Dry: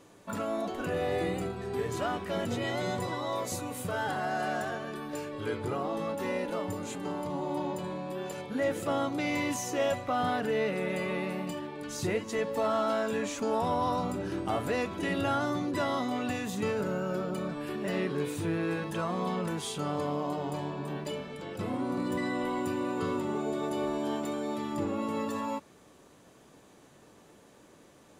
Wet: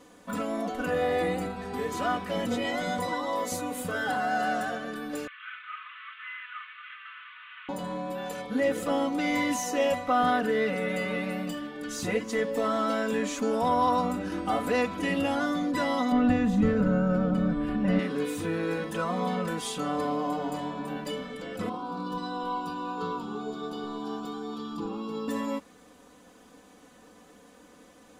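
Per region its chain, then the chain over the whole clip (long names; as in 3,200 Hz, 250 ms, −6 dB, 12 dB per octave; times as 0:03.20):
0:05.27–0:07.69: linear delta modulator 16 kbit/s, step −39.5 dBFS + Butterworth high-pass 1,200 Hz 72 dB per octave
0:16.12–0:17.99: RIAA equalisation playback + notch filter 410 Hz, Q 6.3
0:21.69–0:25.28: high shelf with overshoot 6,200 Hz −10 dB, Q 1.5 + phaser with its sweep stopped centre 390 Hz, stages 8
whole clip: parametric band 1,200 Hz +2 dB; comb filter 4 ms, depth 86%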